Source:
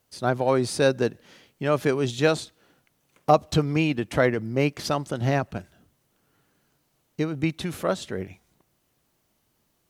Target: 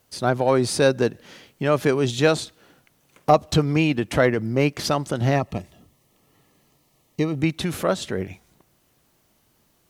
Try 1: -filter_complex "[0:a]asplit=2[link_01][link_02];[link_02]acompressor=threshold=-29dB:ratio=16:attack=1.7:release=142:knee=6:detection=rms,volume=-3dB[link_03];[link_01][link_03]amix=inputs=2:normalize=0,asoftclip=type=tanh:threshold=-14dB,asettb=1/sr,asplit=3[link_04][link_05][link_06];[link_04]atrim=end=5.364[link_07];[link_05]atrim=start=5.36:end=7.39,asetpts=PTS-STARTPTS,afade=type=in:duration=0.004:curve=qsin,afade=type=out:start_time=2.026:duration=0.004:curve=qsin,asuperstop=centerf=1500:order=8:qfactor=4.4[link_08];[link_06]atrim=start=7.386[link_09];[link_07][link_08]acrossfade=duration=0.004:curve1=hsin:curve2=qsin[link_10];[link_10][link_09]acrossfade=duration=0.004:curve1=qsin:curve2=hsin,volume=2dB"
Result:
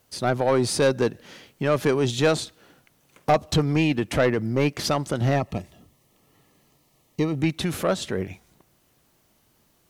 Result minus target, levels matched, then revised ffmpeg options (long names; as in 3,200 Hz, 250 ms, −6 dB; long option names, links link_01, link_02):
soft clipping: distortion +17 dB
-filter_complex "[0:a]asplit=2[link_01][link_02];[link_02]acompressor=threshold=-29dB:ratio=16:attack=1.7:release=142:knee=6:detection=rms,volume=-3dB[link_03];[link_01][link_03]amix=inputs=2:normalize=0,asoftclip=type=tanh:threshold=-2.5dB,asettb=1/sr,asplit=3[link_04][link_05][link_06];[link_04]atrim=end=5.364[link_07];[link_05]atrim=start=5.36:end=7.39,asetpts=PTS-STARTPTS,afade=type=in:duration=0.004:curve=qsin,afade=type=out:start_time=2.026:duration=0.004:curve=qsin,asuperstop=centerf=1500:order=8:qfactor=4.4[link_08];[link_06]atrim=start=7.386[link_09];[link_07][link_08]acrossfade=duration=0.004:curve1=hsin:curve2=qsin[link_10];[link_10][link_09]acrossfade=duration=0.004:curve1=qsin:curve2=hsin,volume=2dB"